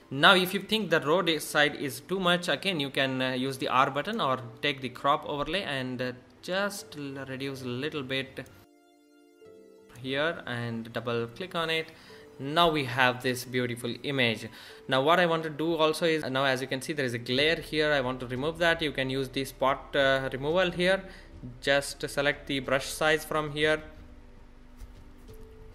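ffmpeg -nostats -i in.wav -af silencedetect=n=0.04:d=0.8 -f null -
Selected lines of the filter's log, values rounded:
silence_start: 8.41
silence_end: 10.06 | silence_duration: 1.65
silence_start: 23.76
silence_end: 25.74 | silence_duration: 1.99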